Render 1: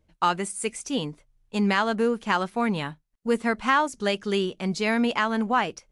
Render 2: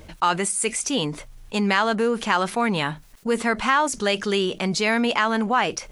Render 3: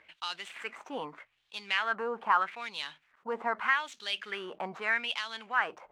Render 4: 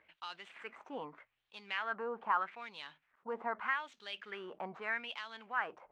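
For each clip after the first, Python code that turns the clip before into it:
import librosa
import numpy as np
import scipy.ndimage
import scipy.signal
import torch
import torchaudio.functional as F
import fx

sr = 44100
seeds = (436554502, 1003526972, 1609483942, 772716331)

y1 = fx.low_shelf(x, sr, hz=380.0, db=-6.5)
y1 = fx.env_flatten(y1, sr, amount_pct=50)
y1 = y1 * 10.0 ** (2.0 / 20.0)
y2 = scipy.ndimage.median_filter(y1, 9, mode='constant')
y2 = fx.filter_lfo_bandpass(y2, sr, shape='sine', hz=0.81, low_hz=850.0, high_hz=4000.0, q=2.7)
y3 = fx.lowpass(y2, sr, hz=1800.0, slope=6)
y3 = y3 * 10.0 ** (-5.0 / 20.0)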